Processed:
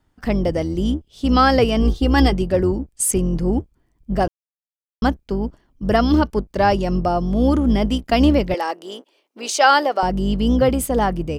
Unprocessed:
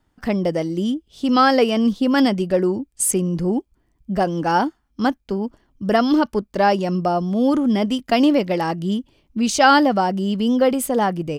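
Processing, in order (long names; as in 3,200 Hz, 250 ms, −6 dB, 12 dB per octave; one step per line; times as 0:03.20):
sub-octave generator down 2 octaves, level −2 dB
0:01.82–0:02.33: comb filter 2.5 ms
0:04.28–0:05.02: silence
0:08.54–0:10.03: high-pass filter 400 Hz 24 dB per octave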